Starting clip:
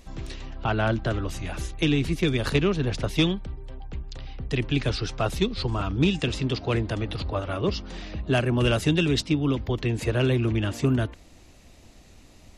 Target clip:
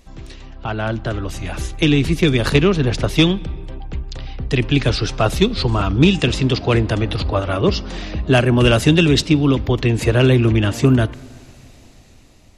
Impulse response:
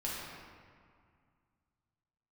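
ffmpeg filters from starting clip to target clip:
-filter_complex "[0:a]dynaudnorm=f=400:g=7:m=3.76,asplit=2[s0][s1];[1:a]atrim=start_sample=2205,adelay=46[s2];[s1][s2]afir=irnorm=-1:irlink=0,volume=0.0531[s3];[s0][s3]amix=inputs=2:normalize=0"

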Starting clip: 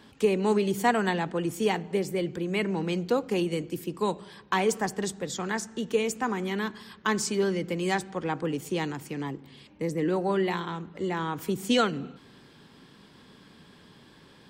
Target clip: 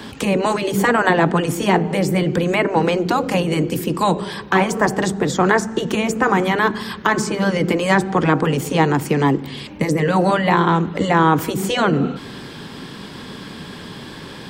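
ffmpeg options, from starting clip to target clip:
-filter_complex "[0:a]acrossover=split=160|1700[s0][s1][s2];[s0]acompressor=threshold=0.00562:ratio=4[s3];[s1]acompressor=threshold=0.0501:ratio=4[s4];[s2]acompressor=threshold=0.00316:ratio=4[s5];[s3][s4][s5]amix=inputs=3:normalize=0,afftfilt=real='re*lt(hypot(re,im),0.2)':imag='im*lt(hypot(re,im),0.2)':win_size=1024:overlap=0.75,alimiter=level_in=10.6:limit=0.891:release=50:level=0:latency=1,volume=0.891"

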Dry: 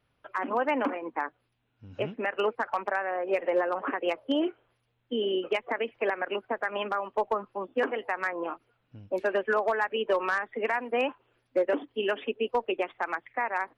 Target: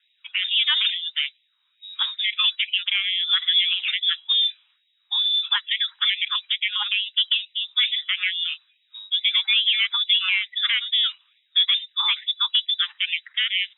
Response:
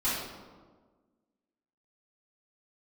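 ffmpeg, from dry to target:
-af "aeval=exprs='0.141*(cos(1*acos(clip(val(0)/0.141,-1,1)))-cos(1*PI/2))+0.00355*(cos(5*acos(clip(val(0)/0.141,-1,1)))-cos(5*PI/2))+0.00141*(cos(6*acos(clip(val(0)/0.141,-1,1)))-cos(6*PI/2))':c=same,lowpass=f=3300:t=q:w=0.5098,lowpass=f=3300:t=q:w=0.6013,lowpass=f=3300:t=q:w=0.9,lowpass=f=3300:t=q:w=2.563,afreqshift=-3900,afftfilt=real='re*gte(b*sr/1024,770*pow(1900/770,0.5+0.5*sin(2*PI*2.3*pts/sr)))':imag='im*gte(b*sr/1024,770*pow(1900/770,0.5+0.5*sin(2*PI*2.3*pts/sr)))':win_size=1024:overlap=0.75,volume=2"

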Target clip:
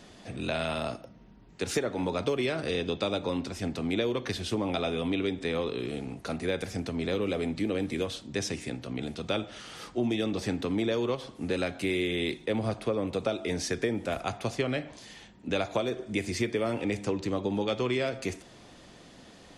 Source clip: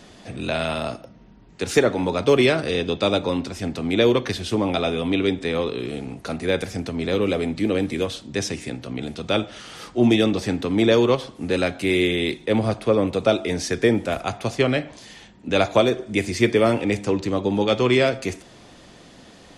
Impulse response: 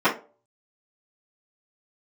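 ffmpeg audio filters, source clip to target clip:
-af "acompressor=threshold=0.1:ratio=6,volume=0.562"

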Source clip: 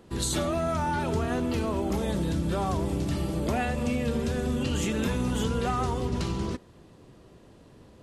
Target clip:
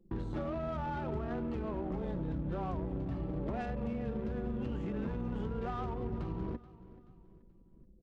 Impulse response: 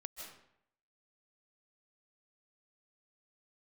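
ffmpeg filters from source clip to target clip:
-filter_complex "[0:a]anlmdn=0.398,acrossover=split=1900[s0][s1];[s1]alimiter=level_in=1.88:limit=0.0631:level=0:latency=1:release=171,volume=0.531[s2];[s0][s2]amix=inputs=2:normalize=0,acompressor=threshold=0.00631:ratio=3,afreqshift=-14,adynamicsmooth=sensitivity=7.5:basefreq=1000,asplit=2[s3][s4];[s4]aecho=0:1:430|860|1290:0.126|0.0529|0.0222[s5];[s3][s5]amix=inputs=2:normalize=0,volume=1.88"

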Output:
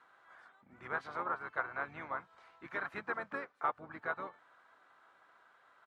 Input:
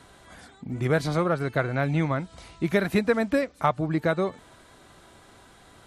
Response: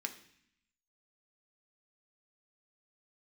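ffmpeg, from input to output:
-filter_complex "[0:a]bandpass=f=1400:t=q:w=2.6:csg=0,asplit=4[s0][s1][s2][s3];[s1]asetrate=22050,aresample=44100,atempo=2,volume=0.224[s4];[s2]asetrate=29433,aresample=44100,atempo=1.49831,volume=0.282[s5];[s3]asetrate=35002,aresample=44100,atempo=1.25992,volume=0.398[s6];[s0][s4][s5][s6]amix=inputs=4:normalize=0,volume=0.531"

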